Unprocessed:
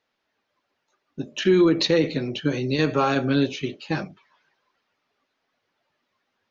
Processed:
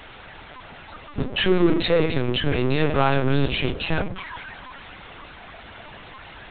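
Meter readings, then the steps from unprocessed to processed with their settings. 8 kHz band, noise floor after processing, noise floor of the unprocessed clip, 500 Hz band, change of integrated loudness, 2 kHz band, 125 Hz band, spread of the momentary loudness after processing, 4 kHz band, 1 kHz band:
can't be measured, −43 dBFS, −77 dBFS, +0.5 dB, 0.0 dB, +3.5 dB, +4.0 dB, 22 LU, +2.5 dB, +2.5 dB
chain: power curve on the samples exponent 0.5
low-shelf EQ 67 Hz −6 dB
in parallel at −2 dB: downward compressor 12 to 1, threshold −29 dBFS, peak gain reduction 17 dB
on the sum: mains-hum notches 60/120/180/240/300/360/420/480 Hz
linear-prediction vocoder at 8 kHz pitch kept
level −3.5 dB

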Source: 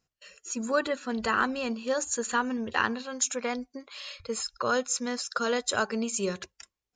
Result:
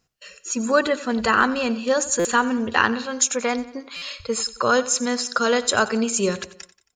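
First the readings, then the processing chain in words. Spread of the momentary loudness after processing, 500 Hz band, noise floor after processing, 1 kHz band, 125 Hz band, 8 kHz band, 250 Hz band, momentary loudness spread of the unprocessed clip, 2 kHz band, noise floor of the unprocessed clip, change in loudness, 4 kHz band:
11 LU, +8.0 dB, −68 dBFS, +8.0 dB, +8.5 dB, +8.0 dB, +8.5 dB, 11 LU, +8.0 dB, below −85 dBFS, +8.0 dB, +8.0 dB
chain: repeating echo 90 ms, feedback 49%, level −17 dB
buffer that repeats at 0:02.19/0:03.96, samples 256, times 9
level +8 dB

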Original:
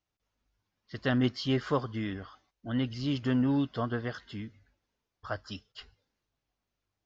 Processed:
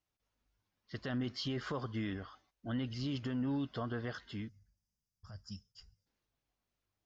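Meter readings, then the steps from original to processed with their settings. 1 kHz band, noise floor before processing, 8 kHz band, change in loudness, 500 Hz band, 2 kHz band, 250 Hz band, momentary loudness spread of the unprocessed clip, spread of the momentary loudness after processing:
−8.5 dB, below −85 dBFS, can't be measured, −8.0 dB, −9.0 dB, −7.5 dB, −8.0 dB, 19 LU, 14 LU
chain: brickwall limiter −26.5 dBFS, peak gain reduction 11 dB
gain on a spectral selection 0:04.49–0:06.07, 230–4,600 Hz −17 dB
level −2.5 dB

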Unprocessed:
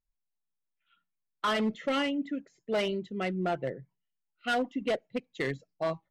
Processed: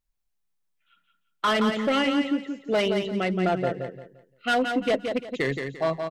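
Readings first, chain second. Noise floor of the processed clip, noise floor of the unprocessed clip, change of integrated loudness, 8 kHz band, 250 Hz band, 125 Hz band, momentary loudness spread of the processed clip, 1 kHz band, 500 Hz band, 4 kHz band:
−75 dBFS, −83 dBFS, +6.5 dB, +6.5 dB, +7.0 dB, +6.5 dB, 7 LU, +6.5 dB, +6.5 dB, +6.5 dB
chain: repeating echo 173 ms, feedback 29%, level −6 dB
level +5.5 dB

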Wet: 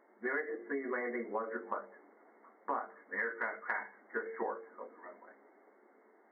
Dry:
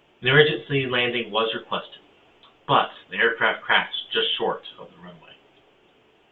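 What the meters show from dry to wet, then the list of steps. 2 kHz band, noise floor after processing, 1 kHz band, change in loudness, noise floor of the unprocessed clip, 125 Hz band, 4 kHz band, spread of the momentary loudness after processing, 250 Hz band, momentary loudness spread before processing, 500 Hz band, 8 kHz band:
−16.0 dB, −66 dBFS, −15.0 dB, −17.0 dB, −59 dBFS, below −35 dB, below −40 dB, 14 LU, −13.0 dB, 11 LU, −15.5 dB, can't be measured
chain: brick-wall band-pass 200–2,200 Hz
mains-hum notches 50/100/150/200/250/300/350/400/450 Hz
downward compressor 8 to 1, threshold −29 dBFS, peak gain reduction 17.5 dB
level −4.5 dB

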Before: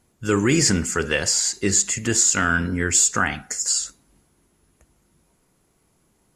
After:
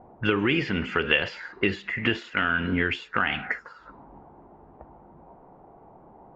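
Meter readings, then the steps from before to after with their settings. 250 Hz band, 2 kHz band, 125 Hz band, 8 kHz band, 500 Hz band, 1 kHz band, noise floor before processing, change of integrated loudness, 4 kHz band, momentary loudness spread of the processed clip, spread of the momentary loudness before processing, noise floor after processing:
−4.5 dB, −0.5 dB, −6.5 dB, below −40 dB, −3.5 dB, −2.5 dB, −65 dBFS, −6.5 dB, −5.0 dB, 6 LU, 7 LU, −52 dBFS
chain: mu-law and A-law mismatch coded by mu
low-shelf EQ 200 Hz −8.5 dB
downward compressor 8 to 1, threshold −27 dBFS, peak gain reduction 13.5 dB
high-frequency loss of the air 300 metres
envelope-controlled low-pass 730–3,000 Hz up, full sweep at −34.5 dBFS
level +7 dB

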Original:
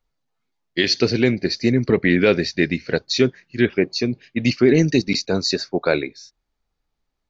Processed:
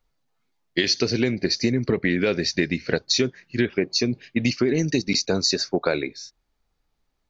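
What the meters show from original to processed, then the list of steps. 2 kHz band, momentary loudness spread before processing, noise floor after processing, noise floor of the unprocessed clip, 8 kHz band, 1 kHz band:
−4.0 dB, 7 LU, −74 dBFS, −77 dBFS, can't be measured, −3.0 dB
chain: dynamic equaliser 6,100 Hz, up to +7 dB, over −40 dBFS, Q 1.8
downward compressor, threshold −21 dBFS, peak gain reduction 11 dB
level +3 dB

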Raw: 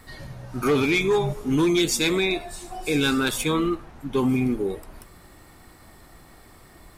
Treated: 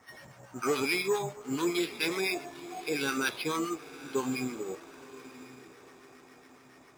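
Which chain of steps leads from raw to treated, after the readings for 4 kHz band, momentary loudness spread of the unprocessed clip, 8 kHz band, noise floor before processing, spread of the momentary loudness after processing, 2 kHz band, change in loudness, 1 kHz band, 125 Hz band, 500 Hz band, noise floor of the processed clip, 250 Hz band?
−8.5 dB, 14 LU, −8.0 dB, −50 dBFS, 20 LU, −6.0 dB, −9.0 dB, −5.5 dB, −16.0 dB, −8.5 dB, −57 dBFS, −11.0 dB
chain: two-band tremolo in antiphase 7.2 Hz, crossover 980 Hz
low-shelf EQ 140 Hz +7.5 dB
feedback delay with all-pass diffusion 986 ms, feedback 41%, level −16 dB
bad sample-rate conversion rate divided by 6×, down filtered, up hold
meter weighting curve A
level −2 dB

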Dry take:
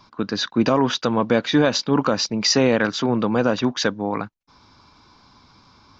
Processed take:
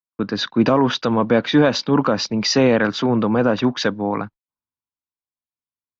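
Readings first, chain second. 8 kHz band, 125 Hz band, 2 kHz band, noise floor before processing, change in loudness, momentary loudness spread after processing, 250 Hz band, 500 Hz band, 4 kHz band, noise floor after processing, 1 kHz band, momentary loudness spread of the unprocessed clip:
can't be measured, +3.0 dB, +1.5 dB, −57 dBFS, +2.0 dB, 8 LU, +2.5 dB, +2.5 dB, −0.5 dB, below −85 dBFS, +2.0 dB, 9 LU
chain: in parallel at −2 dB: brickwall limiter −15.5 dBFS, peak gain reduction 9.5 dB
on the sum: noise gate −35 dBFS, range −42 dB
high-frequency loss of the air 140 metres
multiband upward and downward expander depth 40%

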